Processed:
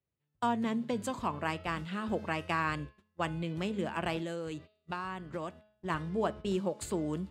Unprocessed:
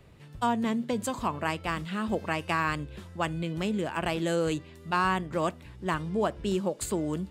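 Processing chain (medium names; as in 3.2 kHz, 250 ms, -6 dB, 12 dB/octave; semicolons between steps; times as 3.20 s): high-pass 55 Hz 12 dB/octave; gate -38 dBFS, range -31 dB; treble shelf 8.6 kHz -8.5 dB; de-hum 212.7 Hz, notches 24; 4.17–5.90 s: compression 6:1, threshold -31 dBFS, peak gain reduction 9.5 dB; trim -3.5 dB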